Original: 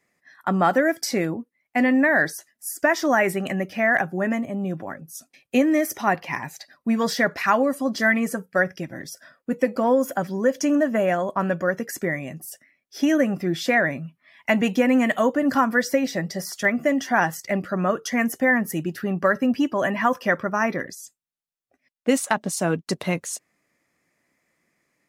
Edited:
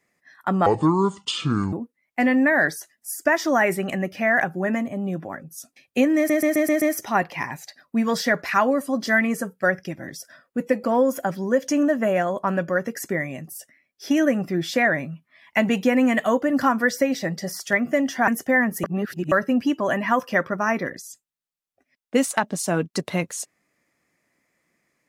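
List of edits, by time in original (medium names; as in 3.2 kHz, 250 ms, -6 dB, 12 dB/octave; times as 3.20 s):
0.66–1.30 s: speed 60%
5.74 s: stutter 0.13 s, 6 plays
17.20–18.21 s: delete
18.77–19.25 s: reverse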